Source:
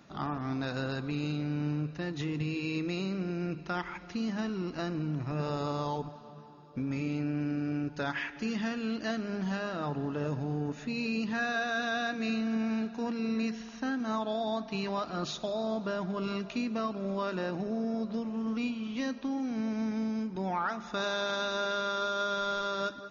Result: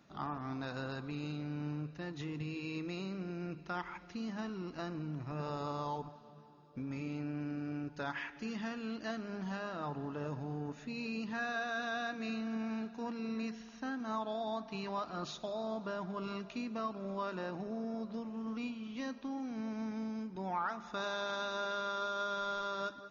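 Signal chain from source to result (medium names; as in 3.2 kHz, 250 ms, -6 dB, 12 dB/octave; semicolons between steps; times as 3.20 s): dynamic bell 1 kHz, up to +5 dB, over -47 dBFS, Q 1.5; trim -7.5 dB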